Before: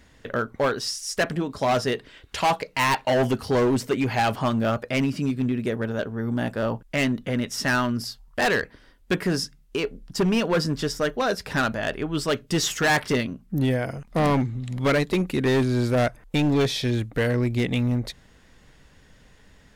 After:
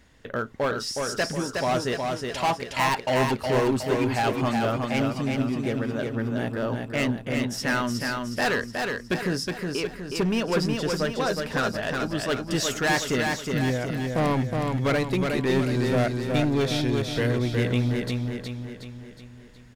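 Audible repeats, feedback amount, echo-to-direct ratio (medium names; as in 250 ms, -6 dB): 6, 50%, -3.0 dB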